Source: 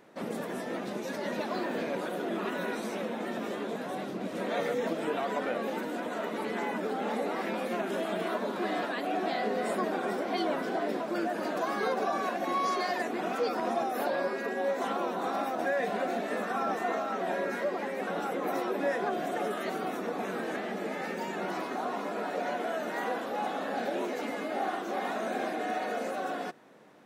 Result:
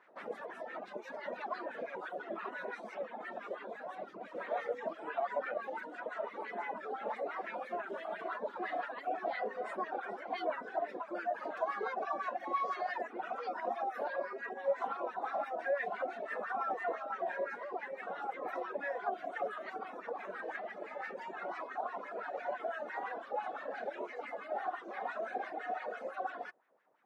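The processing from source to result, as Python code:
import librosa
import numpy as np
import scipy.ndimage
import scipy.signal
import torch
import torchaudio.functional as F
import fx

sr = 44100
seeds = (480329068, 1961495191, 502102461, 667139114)

y = fx.dereverb_blind(x, sr, rt60_s=1.6)
y = fx.filter_lfo_bandpass(y, sr, shape='sine', hz=5.9, low_hz=570.0, high_hz=1900.0, q=2.3)
y = F.gain(torch.from_numpy(y), 2.0).numpy()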